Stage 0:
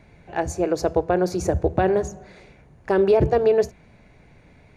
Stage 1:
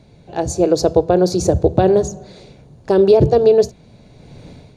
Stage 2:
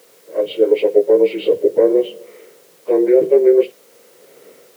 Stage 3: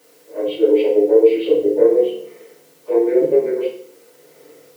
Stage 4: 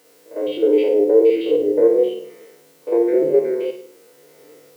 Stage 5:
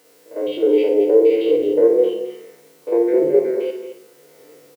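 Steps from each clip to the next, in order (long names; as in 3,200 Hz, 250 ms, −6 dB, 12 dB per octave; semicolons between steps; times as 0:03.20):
graphic EQ with 10 bands 125 Hz +7 dB, 250 Hz +4 dB, 500 Hz +5 dB, 2,000 Hz −9 dB, 4,000 Hz +11 dB, 8,000 Hz +5 dB; automatic gain control gain up to 12 dB; level −1 dB
partials spread apart or drawn together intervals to 76%; background noise white −48 dBFS; high-pass with resonance 470 Hz, resonance Q 4; level −4.5 dB
feedback delay network reverb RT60 0.56 s, low-frequency decay 1.4×, high-frequency decay 0.85×, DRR −5 dB; level −8 dB
spectrum averaged block by block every 50 ms
single-tap delay 219 ms −10.5 dB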